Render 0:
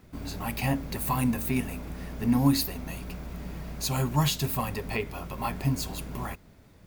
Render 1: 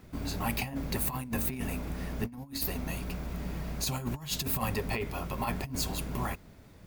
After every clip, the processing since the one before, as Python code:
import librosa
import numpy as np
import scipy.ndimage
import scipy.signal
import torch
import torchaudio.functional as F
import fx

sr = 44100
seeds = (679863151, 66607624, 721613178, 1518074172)

y = fx.over_compress(x, sr, threshold_db=-30.0, ratio=-0.5)
y = y * librosa.db_to_amplitude(-1.5)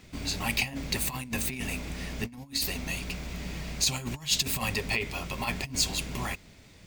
y = fx.band_shelf(x, sr, hz=4100.0, db=10.0, octaves=2.4)
y = y * librosa.db_to_amplitude(-1.0)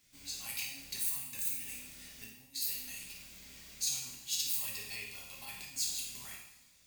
y = F.preemphasis(torch.from_numpy(x), 0.9).numpy()
y = fx.room_flutter(y, sr, wall_m=9.5, rt60_s=0.37)
y = fx.rev_double_slope(y, sr, seeds[0], early_s=0.76, late_s=2.4, knee_db=-18, drr_db=-1.5)
y = y * librosa.db_to_amplitude(-8.5)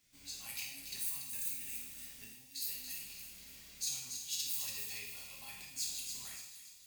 y = fx.echo_wet_highpass(x, sr, ms=284, feedback_pct=45, hz=3200.0, wet_db=-6.0)
y = y * librosa.db_to_amplitude(-4.0)